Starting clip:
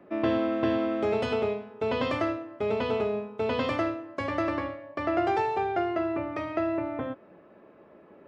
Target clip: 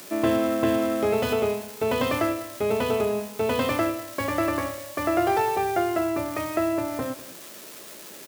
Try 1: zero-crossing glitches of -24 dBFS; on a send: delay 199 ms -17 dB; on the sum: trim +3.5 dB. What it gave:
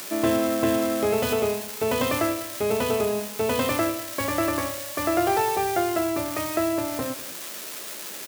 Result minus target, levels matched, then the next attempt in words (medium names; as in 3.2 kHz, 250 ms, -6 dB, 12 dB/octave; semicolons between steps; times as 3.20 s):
zero-crossing glitches: distortion +7 dB
zero-crossing glitches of -31 dBFS; on a send: delay 199 ms -17 dB; on the sum: trim +3.5 dB